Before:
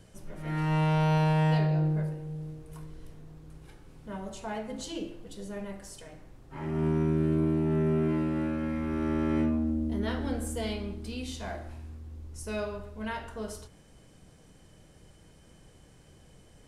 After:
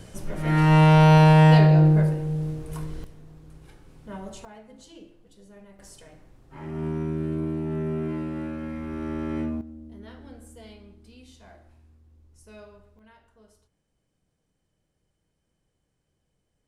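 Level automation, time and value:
+10.5 dB
from 0:03.04 +1 dB
from 0:04.45 −11 dB
from 0:05.79 −2 dB
from 0:09.61 −13 dB
from 0:12.99 −20 dB

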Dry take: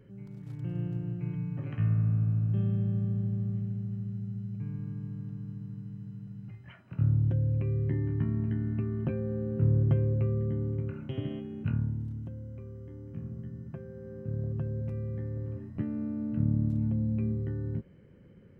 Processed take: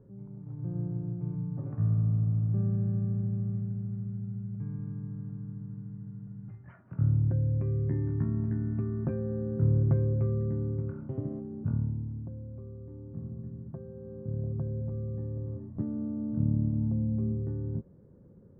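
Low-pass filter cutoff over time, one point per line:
low-pass filter 24 dB per octave
0:02.28 1,100 Hz
0:02.88 1,600 Hz
0:10.70 1,600 Hz
0:11.23 1,100 Hz

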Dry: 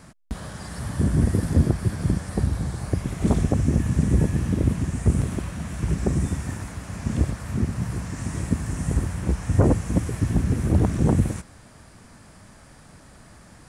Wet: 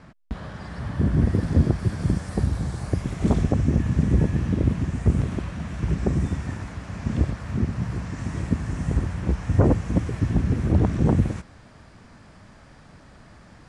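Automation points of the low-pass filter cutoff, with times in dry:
0:01.01 3,400 Hz
0:02.17 7,900 Hz
0:02.96 7,900 Hz
0:03.69 4,800 Hz

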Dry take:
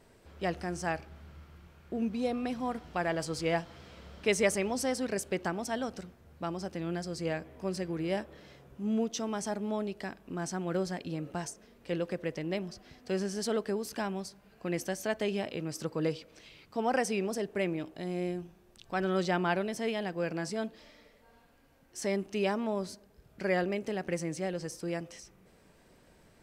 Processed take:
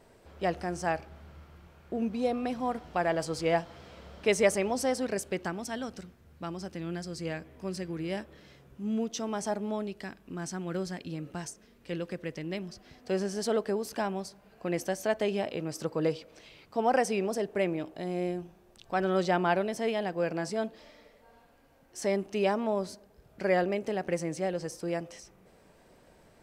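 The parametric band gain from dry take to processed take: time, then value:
parametric band 670 Hz 1.5 octaves
0:04.99 +4.5 dB
0:05.61 −4 dB
0:08.92 −4 dB
0:09.49 +5 dB
0:10.01 −4.5 dB
0:12.60 −4.5 dB
0:13.13 +5 dB

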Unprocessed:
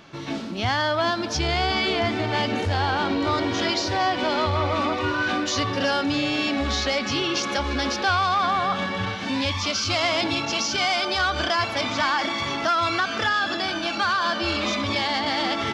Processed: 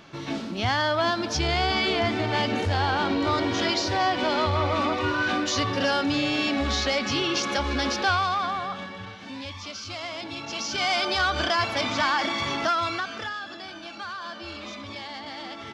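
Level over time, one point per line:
0:08.08 −1 dB
0:09.02 −12 dB
0:10.26 −12 dB
0:10.94 −1 dB
0:12.63 −1 dB
0:13.47 −13 dB

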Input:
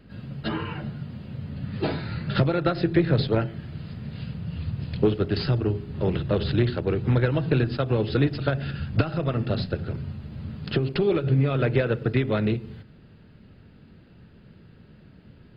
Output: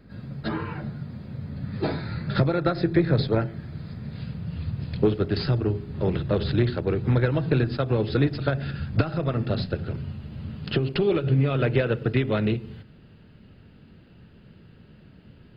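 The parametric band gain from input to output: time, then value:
parametric band 2,900 Hz 0.23 octaves
0:03.91 −13 dB
0:04.39 −5.5 dB
0:09.33 −5.5 dB
0:10.02 +4 dB

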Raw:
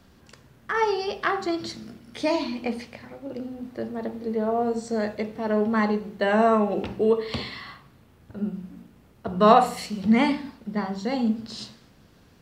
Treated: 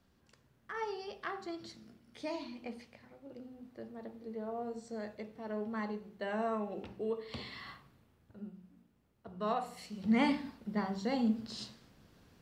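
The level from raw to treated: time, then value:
0:07.25 −15.5 dB
0:07.69 −7 dB
0:08.55 −19 dB
0:09.62 −19 dB
0:10.29 −7 dB

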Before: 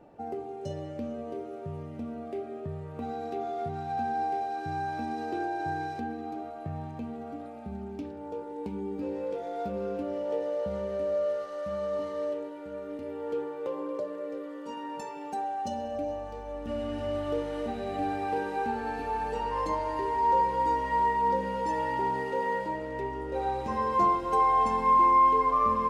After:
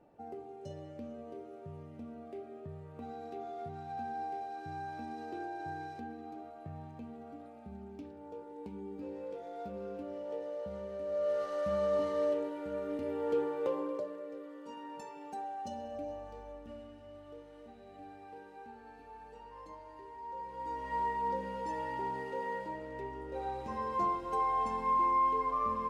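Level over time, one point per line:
0:11.03 −9 dB
0:11.45 +1 dB
0:13.66 +1 dB
0:14.25 −8 dB
0:16.44 −8 dB
0:17.00 −20 dB
0:20.33 −20 dB
0:20.95 −8 dB

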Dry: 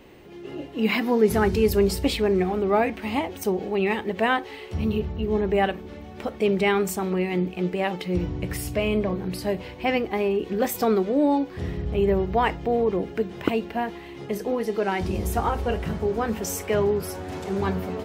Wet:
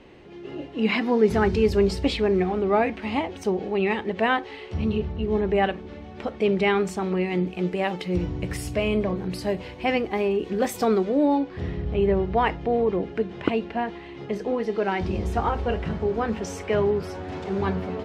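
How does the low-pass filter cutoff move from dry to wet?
0:07.03 5,300 Hz
0:07.55 9,400 Hz
0:10.92 9,400 Hz
0:11.40 4,400 Hz

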